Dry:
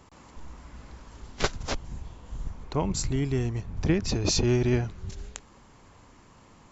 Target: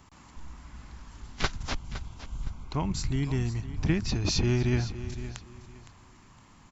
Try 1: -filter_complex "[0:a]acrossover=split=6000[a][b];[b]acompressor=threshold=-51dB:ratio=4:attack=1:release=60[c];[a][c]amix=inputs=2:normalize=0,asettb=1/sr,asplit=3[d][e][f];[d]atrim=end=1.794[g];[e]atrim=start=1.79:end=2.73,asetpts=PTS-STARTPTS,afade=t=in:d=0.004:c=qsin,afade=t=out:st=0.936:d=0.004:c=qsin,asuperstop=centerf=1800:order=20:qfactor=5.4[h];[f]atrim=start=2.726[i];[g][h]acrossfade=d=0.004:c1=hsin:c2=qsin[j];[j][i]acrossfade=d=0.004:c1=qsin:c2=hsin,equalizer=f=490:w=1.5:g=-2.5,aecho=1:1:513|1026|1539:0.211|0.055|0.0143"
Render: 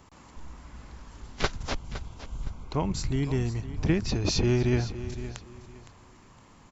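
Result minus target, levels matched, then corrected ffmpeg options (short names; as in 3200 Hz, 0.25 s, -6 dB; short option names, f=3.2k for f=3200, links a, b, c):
500 Hz band +3.5 dB
-filter_complex "[0:a]acrossover=split=6000[a][b];[b]acompressor=threshold=-51dB:ratio=4:attack=1:release=60[c];[a][c]amix=inputs=2:normalize=0,asettb=1/sr,asplit=3[d][e][f];[d]atrim=end=1.794[g];[e]atrim=start=1.79:end=2.73,asetpts=PTS-STARTPTS,afade=t=in:d=0.004:c=qsin,afade=t=out:st=0.936:d=0.004:c=qsin,asuperstop=centerf=1800:order=20:qfactor=5.4[h];[f]atrim=start=2.726[i];[g][h]acrossfade=d=0.004:c1=hsin:c2=qsin[j];[j][i]acrossfade=d=0.004:c1=qsin:c2=hsin,equalizer=f=490:w=1.5:g=-10,aecho=1:1:513|1026|1539:0.211|0.055|0.0143"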